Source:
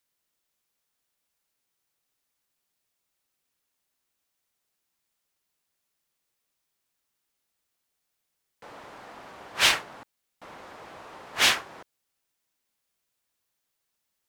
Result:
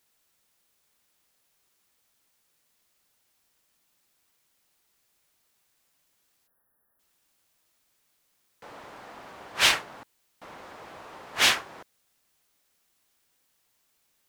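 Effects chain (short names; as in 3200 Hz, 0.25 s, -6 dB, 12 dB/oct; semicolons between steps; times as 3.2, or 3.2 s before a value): requantised 12-bit, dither triangular; spectral delete 6.47–7, 1900–10000 Hz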